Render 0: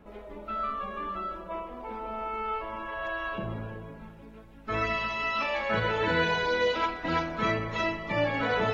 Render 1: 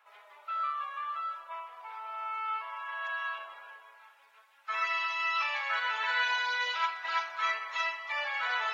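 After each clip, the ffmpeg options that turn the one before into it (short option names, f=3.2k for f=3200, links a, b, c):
-af "highpass=f=960:w=0.5412,highpass=f=960:w=1.3066"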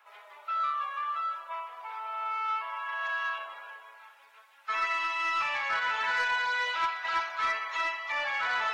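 -filter_complex "[0:a]acrossover=split=780|2400[a][b][c];[c]alimiter=level_in=13.5dB:limit=-24dB:level=0:latency=1:release=71,volume=-13.5dB[d];[a][b][d]amix=inputs=3:normalize=0,asoftclip=type=tanh:threshold=-25.5dB,volume=4dB"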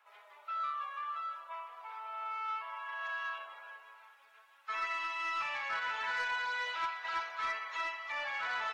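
-af "aecho=1:1:614|1228|1842:0.0891|0.0392|0.0173,volume=-6.5dB"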